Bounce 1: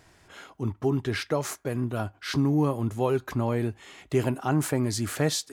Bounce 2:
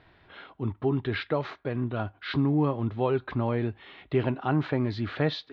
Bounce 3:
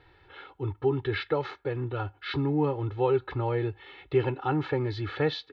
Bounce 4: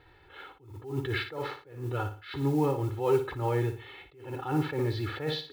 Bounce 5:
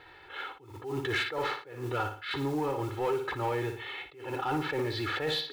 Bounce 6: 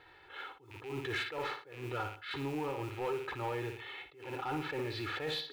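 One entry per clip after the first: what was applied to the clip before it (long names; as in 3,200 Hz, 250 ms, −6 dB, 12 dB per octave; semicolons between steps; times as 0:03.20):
elliptic low-pass filter 3,900 Hz, stop band 60 dB
comb filter 2.3 ms, depth 100%; level −3 dB
noise that follows the level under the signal 28 dB; flutter between parallel walls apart 10 metres, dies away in 0.37 s; level that may rise only so fast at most 110 dB per second
downward compressor, threshold −28 dBFS, peak gain reduction 8.5 dB; mid-hump overdrive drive 14 dB, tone 6,200 Hz, clips at −21 dBFS
loose part that buzzes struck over −48 dBFS, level −33 dBFS; level −6 dB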